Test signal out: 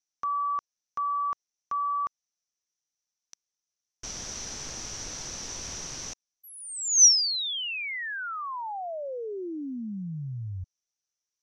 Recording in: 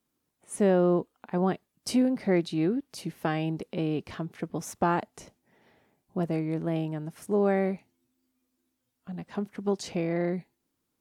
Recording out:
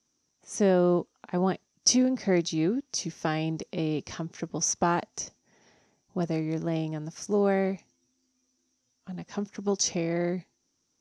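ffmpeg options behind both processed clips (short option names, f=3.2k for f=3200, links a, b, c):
-af "lowpass=f=5.9k:t=q:w=12"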